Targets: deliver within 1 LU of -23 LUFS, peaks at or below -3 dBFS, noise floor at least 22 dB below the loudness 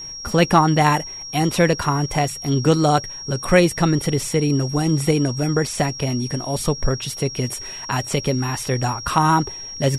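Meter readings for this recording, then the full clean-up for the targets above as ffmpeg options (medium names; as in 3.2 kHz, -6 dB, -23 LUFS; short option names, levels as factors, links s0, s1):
steady tone 5.6 kHz; tone level -31 dBFS; loudness -20.0 LUFS; peak level -2.5 dBFS; loudness target -23.0 LUFS
-> -af "bandreject=f=5600:w=30"
-af "volume=0.708"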